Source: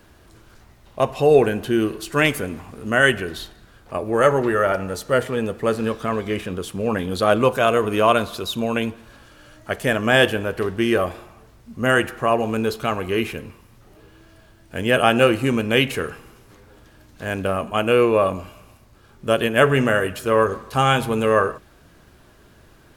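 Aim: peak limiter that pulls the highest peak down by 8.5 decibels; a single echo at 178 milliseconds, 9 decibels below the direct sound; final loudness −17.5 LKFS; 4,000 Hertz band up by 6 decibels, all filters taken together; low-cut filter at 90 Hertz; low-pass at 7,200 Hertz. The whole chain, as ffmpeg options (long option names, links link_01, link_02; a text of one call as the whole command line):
ffmpeg -i in.wav -af "highpass=90,lowpass=7200,equalizer=frequency=4000:width_type=o:gain=9,alimiter=limit=-7.5dB:level=0:latency=1,aecho=1:1:178:0.355,volume=3.5dB" out.wav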